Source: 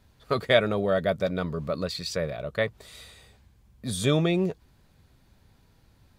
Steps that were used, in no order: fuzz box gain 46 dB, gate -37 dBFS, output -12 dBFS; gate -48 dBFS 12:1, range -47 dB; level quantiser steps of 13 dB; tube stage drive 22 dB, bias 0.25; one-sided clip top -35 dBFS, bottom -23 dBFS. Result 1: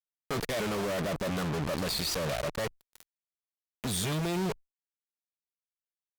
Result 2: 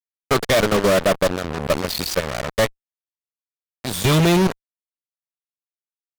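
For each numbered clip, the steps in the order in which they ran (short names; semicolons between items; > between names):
gate > fuzz box > level quantiser > one-sided clip > tube stage; level quantiser > gate > one-sided clip > tube stage > fuzz box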